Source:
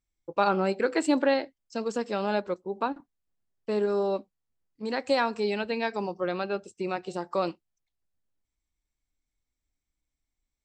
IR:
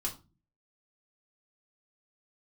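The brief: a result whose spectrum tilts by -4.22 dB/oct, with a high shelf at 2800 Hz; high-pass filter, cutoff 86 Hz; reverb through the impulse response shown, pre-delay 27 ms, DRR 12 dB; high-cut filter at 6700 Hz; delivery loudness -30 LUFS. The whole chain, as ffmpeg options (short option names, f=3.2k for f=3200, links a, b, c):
-filter_complex "[0:a]highpass=86,lowpass=6.7k,highshelf=f=2.8k:g=-3.5,asplit=2[a][b];[1:a]atrim=start_sample=2205,adelay=27[c];[b][c]afir=irnorm=-1:irlink=0,volume=-14dB[d];[a][d]amix=inputs=2:normalize=0,volume=-1dB"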